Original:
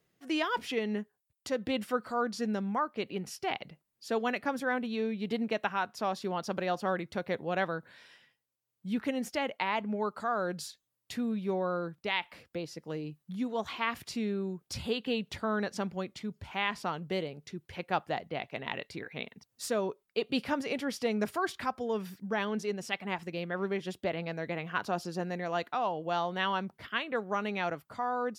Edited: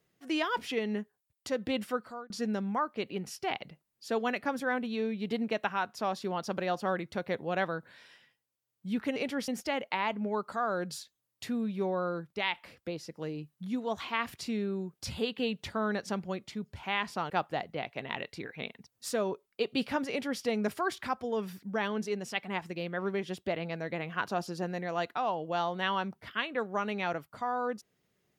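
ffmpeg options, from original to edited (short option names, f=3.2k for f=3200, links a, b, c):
-filter_complex "[0:a]asplit=5[a][b][c][d][e];[a]atrim=end=2.3,asetpts=PTS-STARTPTS,afade=t=out:st=1.87:d=0.43[f];[b]atrim=start=2.3:end=9.162,asetpts=PTS-STARTPTS,afade=t=in:d=0.004:c=hsin[g];[c]atrim=start=20.658:end=20.982[h];[d]atrim=start=9.158:end=16.982[i];[e]atrim=start=17.868[j];[f][g]concat=n=2:v=0:a=1[k];[k][h]acrossfade=d=0.004:c1=hsin:c2=hsin[l];[l][i]acrossfade=d=0.004:c1=hsin:c2=hsin[m];[m][j]acrossfade=d=0.004:c1=hsin:c2=hsin"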